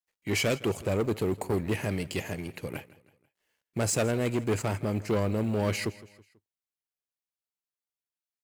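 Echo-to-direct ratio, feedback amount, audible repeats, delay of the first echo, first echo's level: -18.5 dB, 45%, 3, 0.163 s, -19.5 dB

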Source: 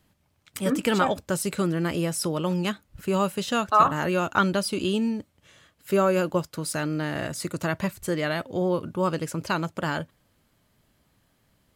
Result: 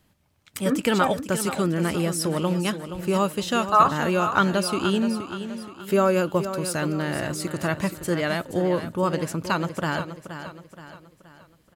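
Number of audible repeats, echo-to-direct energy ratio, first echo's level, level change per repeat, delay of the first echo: 4, -9.5 dB, -10.5 dB, -7.0 dB, 0.474 s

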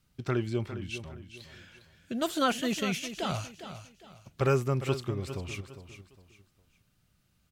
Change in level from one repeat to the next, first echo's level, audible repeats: -9.5 dB, -11.5 dB, 3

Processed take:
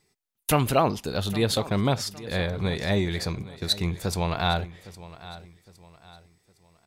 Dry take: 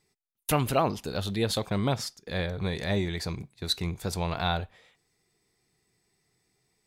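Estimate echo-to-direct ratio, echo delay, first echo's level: -16.5 dB, 0.811 s, -17.0 dB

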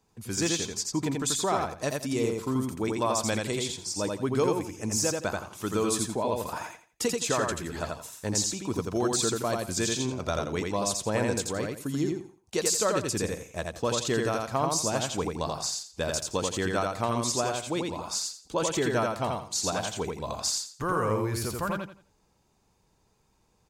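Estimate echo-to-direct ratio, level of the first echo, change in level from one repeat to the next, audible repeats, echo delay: -2.5 dB, -3.0 dB, -12.0 dB, 3, 85 ms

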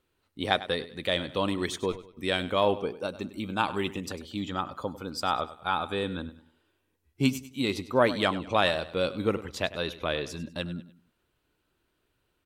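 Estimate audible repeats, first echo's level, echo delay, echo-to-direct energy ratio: 3, -15.5 dB, 99 ms, -15.0 dB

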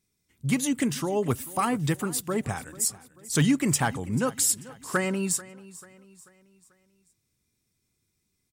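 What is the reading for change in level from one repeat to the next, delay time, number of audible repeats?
-7.0 dB, 0.439 s, 3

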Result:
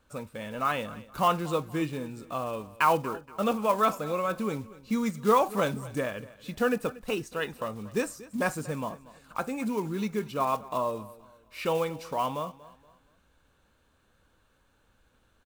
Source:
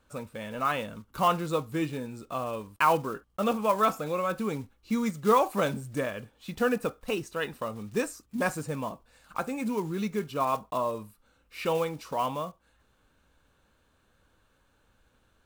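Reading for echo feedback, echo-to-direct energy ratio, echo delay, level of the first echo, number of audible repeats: 36%, -18.5 dB, 0.236 s, -19.0 dB, 2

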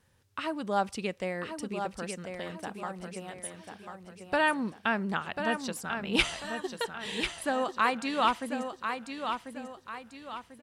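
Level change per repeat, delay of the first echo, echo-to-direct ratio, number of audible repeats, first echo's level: -8.0 dB, 1.043 s, -6.0 dB, 4, -7.0 dB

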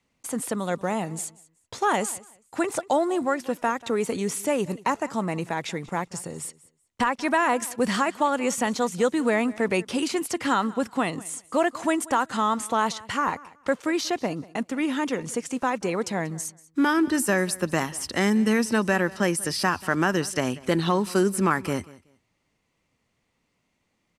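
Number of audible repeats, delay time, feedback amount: 2, 0.187 s, 21%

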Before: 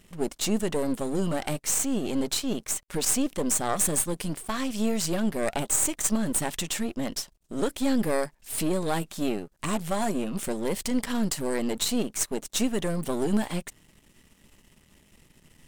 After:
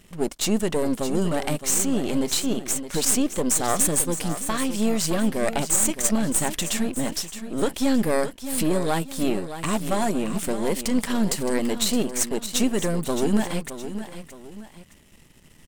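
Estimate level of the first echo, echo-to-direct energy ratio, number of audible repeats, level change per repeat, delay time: -11.0 dB, -10.5 dB, 2, -8.0 dB, 0.617 s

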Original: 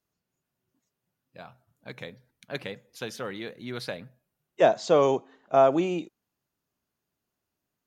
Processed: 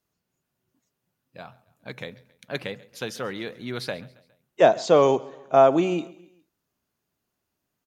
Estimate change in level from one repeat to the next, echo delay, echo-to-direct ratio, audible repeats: -6.0 dB, 0.137 s, -21.0 dB, 3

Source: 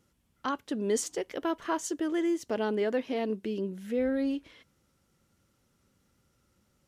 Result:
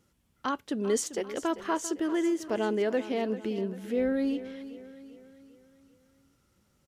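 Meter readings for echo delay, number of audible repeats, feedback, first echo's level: 0.394 s, 4, 48%, -14.0 dB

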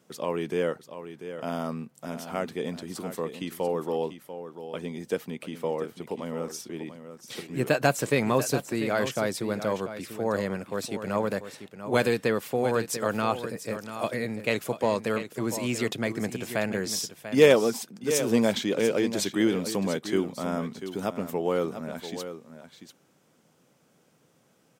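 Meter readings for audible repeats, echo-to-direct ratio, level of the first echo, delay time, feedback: 1, -11.0 dB, -11.0 dB, 0.691 s, no steady repeat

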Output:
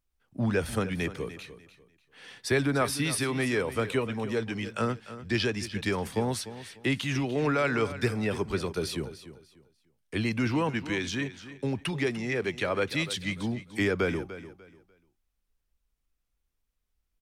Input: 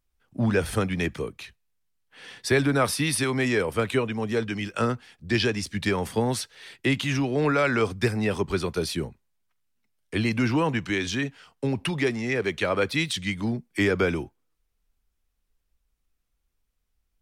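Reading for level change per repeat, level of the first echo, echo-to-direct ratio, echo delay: -11.5 dB, -14.0 dB, -13.5 dB, 0.296 s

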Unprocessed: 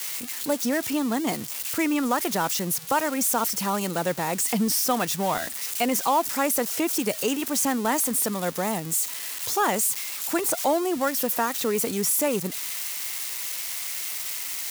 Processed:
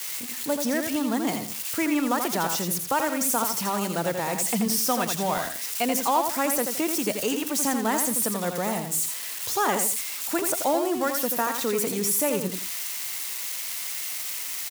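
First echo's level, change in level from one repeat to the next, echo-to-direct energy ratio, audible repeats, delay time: -6.0 dB, -11.0 dB, -5.5 dB, 2, 84 ms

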